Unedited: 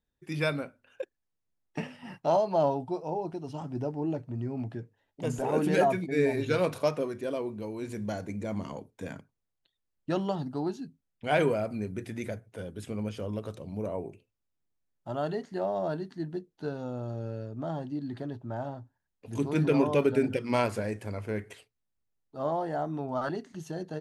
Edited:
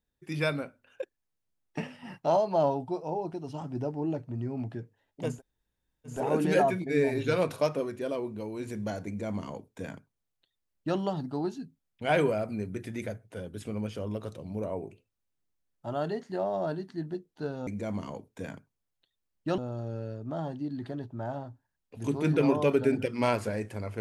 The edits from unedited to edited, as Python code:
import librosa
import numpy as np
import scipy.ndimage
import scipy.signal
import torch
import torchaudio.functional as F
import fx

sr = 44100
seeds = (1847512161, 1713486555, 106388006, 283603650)

y = fx.edit(x, sr, fx.insert_room_tone(at_s=5.34, length_s=0.78, crossfade_s=0.16),
    fx.duplicate(start_s=8.29, length_s=1.91, to_s=16.89), tone=tone)